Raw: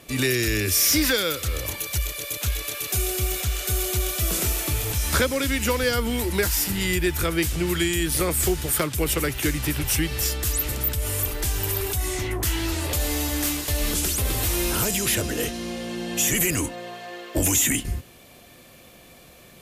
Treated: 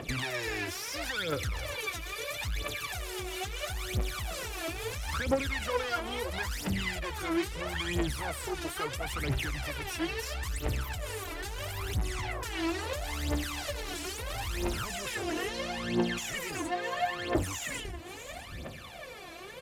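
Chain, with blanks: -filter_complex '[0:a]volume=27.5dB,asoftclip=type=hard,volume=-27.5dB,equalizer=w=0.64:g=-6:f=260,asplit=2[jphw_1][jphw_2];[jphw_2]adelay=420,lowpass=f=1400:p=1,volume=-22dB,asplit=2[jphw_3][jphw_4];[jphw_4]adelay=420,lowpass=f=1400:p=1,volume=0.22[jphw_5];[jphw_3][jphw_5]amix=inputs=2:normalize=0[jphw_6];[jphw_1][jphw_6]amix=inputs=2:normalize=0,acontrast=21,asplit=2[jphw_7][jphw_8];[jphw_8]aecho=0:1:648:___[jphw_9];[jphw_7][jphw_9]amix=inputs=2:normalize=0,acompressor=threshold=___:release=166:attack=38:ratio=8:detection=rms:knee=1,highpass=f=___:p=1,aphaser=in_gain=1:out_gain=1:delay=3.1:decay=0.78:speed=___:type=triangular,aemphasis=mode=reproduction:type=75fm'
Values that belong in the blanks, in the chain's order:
0.0944, -33dB, 150, 0.75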